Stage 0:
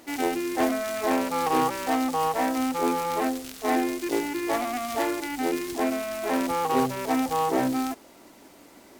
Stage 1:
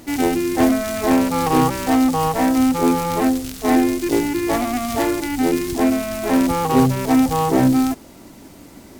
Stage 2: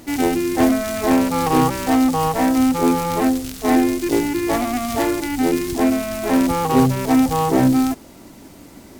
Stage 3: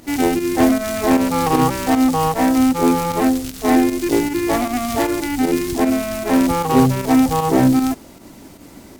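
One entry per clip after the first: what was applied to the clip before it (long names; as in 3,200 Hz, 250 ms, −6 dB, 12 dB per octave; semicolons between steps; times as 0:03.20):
bass and treble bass +15 dB, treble +3 dB; level +4.5 dB
no processing that can be heard
fake sidechain pumping 154 BPM, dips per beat 1, −8 dB, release 90 ms; level +1.5 dB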